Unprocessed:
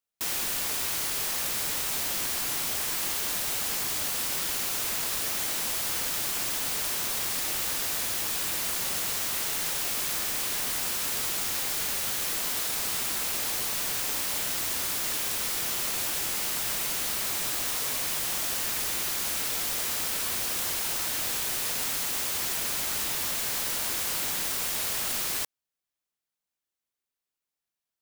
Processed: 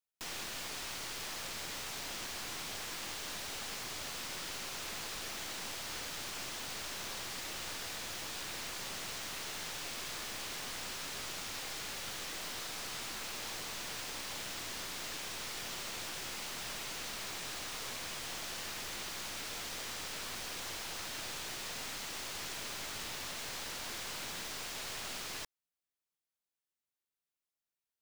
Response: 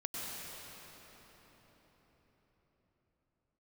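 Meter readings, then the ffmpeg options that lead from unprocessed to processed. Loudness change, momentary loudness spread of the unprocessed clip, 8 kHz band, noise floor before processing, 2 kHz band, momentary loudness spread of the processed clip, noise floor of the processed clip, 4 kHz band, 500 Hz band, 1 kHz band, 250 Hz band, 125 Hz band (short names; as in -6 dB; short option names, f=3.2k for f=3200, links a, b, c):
-13.0 dB, 0 LU, -13.0 dB, under -85 dBFS, -7.5 dB, 0 LU, under -85 dBFS, -8.5 dB, -7.5 dB, -7.5 dB, -7.5 dB, -7.5 dB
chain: -filter_complex "[0:a]aeval=exprs='clip(val(0),-1,0.0266)':c=same,acrossover=split=7000[a][b];[b]acompressor=threshold=-44dB:ratio=4:attack=1:release=60[c];[a][c]amix=inputs=2:normalize=0,volume=-6dB"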